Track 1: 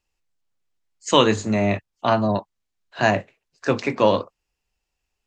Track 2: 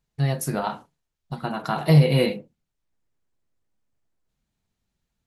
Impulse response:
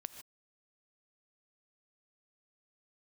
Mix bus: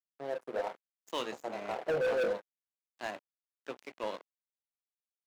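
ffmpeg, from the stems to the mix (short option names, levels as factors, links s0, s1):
-filter_complex "[0:a]aeval=exprs='val(0)+0.0158*(sin(2*PI*60*n/s)+sin(2*PI*2*60*n/s)/2+sin(2*PI*3*60*n/s)/3+sin(2*PI*4*60*n/s)/4+sin(2*PI*5*60*n/s)/5)':c=same,volume=0.141[s0];[1:a]aeval=exprs='val(0)+0.0141*(sin(2*PI*60*n/s)+sin(2*PI*2*60*n/s)/2+sin(2*PI*3*60*n/s)/3+sin(2*PI*4*60*n/s)/4+sin(2*PI*5*60*n/s)/5)':c=same,bandpass=f=510:t=q:w=3.5:csg=0,volume=1.33[s1];[s0][s1]amix=inputs=2:normalize=0,aeval=exprs='sgn(val(0))*max(abs(val(0))-0.00841,0)':c=same,highpass=310,asoftclip=type=hard:threshold=0.0422"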